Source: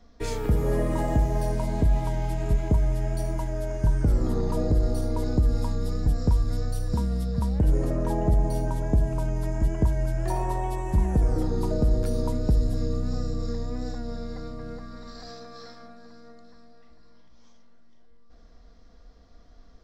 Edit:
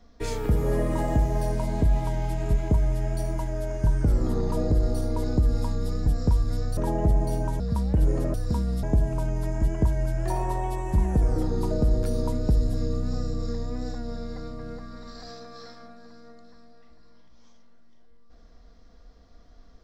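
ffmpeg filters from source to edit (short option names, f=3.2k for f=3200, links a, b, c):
-filter_complex "[0:a]asplit=5[a][b][c][d][e];[a]atrim=end=6.772[f];[b]atrim=start=7.998:end=8.832[g];[c]atrim=start=7.258:end=8.002[h];[d]atrim=start=6.768:end=7.262[i];[e]atrim=start=8.828[j];[f][g]acrossfade=d=0.004:c1=hsin:c2=hsin[k];[k][h]acrossfade=d=0.004:c1=hsin:c2=hsin[l];[l][i]acrossfade=d=0.004:c1=hsin:c2=hsin[m];[m][j]acrossfade=d=0.004:c1=hsin:c2=hsin"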